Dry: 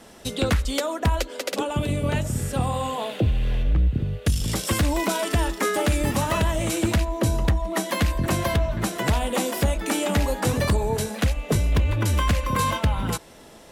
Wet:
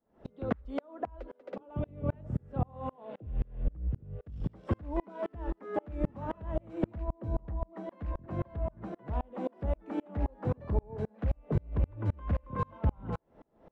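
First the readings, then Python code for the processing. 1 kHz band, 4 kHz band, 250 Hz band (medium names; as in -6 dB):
-14.0 dB, under -30 dB, -11.0 dB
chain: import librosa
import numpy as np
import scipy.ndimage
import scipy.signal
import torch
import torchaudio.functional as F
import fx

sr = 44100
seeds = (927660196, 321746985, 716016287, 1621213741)

y = scipy.signal.sosfilt(scipy.signal.butter(2, 1000.0, 'lowpass', fs=sr, output='sos'), x)
y = fx.tremolo_decay(y, sr, direction='swelling', hz=3.8, depth_db=35)
y = y * librosa.db_to_amplitude(-2.0)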